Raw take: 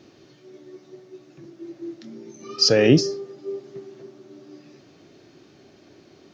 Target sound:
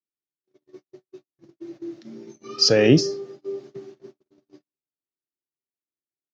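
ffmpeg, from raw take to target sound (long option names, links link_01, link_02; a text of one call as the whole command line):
ffmpeg -i in.wav -af "agate=range=-55dB:threshold=-41dB:ratio=16:detection=peak" out.wav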